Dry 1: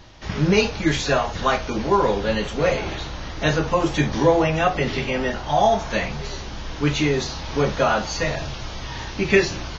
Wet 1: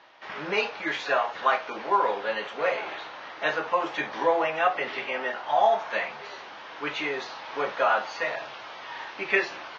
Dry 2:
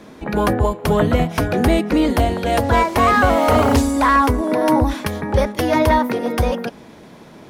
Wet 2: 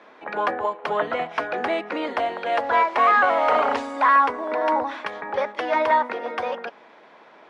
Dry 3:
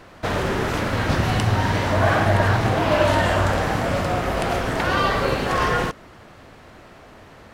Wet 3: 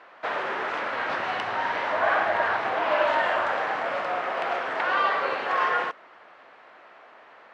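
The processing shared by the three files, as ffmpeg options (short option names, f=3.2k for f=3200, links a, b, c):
-af "highpass=700,lowpass=2.4k" -ar 24000 -c:a libmp3lame -b:a 96k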